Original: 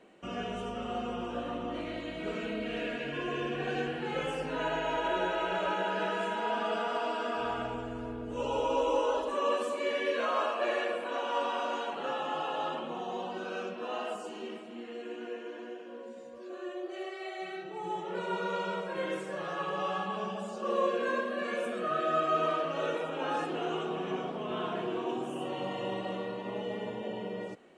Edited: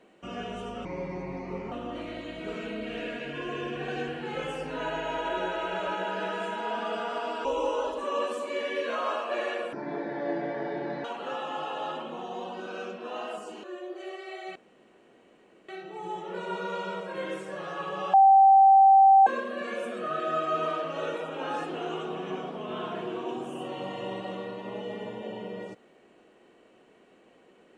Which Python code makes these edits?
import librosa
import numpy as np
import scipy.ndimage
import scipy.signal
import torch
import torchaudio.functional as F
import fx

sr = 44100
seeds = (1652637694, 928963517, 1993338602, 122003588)

y = fx.edit(x, sr, fx.speed_span(start_s=0.85, length_s=0.66, speed=0.76),
    fx.cut(start_s=7.24, length_s=1.51),
    fx.speed_span(start_s=11.03, length_s=0.79, speed=0.6),
    fx.cut(start_s=14.41, length_s=2.16),
    fx.insert_room_tone(at_s=17.49, length_s=1.13),
    fx.bleep(start_s=19.94, length_s=1.13, hz=778.0, db=-13.0), tone=tone)